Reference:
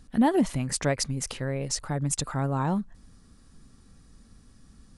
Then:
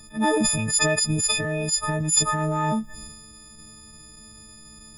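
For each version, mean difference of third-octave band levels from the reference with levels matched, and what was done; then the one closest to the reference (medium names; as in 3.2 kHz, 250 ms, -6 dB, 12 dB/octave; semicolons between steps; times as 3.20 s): 9.0 dB: partials quantised in pitch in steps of 6 st; transient shaper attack -12 dB, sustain +7 dB; in parallel at +3 dB: compression, threshold -32 dBFS, peak gain reduction 15.5 dB; on the sum: endings held to a fixed fall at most 260 dB/s; trim -2 dB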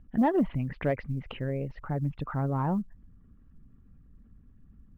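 6.0 dB: resonances exaggerated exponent 1.5; steep low-pass 3 kHz 48 dB/octave; saturation -14.5 dBFS, distortion -21 dB; short-mantissa float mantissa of 6-bit; trim -1 dB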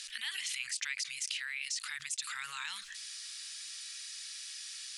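20.0 dB: inverse Chebyshev high-pass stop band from 690 Hz, stop band 60 dB; peak limiter -24.5 dBFS, peak gain reduction 10.5 dB; distance through air 50 m; level flattener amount 70%; trim +2 dB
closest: second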